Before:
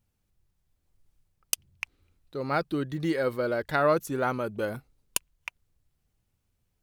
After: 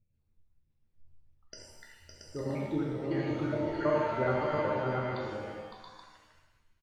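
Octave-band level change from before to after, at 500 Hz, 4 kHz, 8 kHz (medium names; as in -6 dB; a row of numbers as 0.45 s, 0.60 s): -2.5 dB, -9.0 dB, under -15 dB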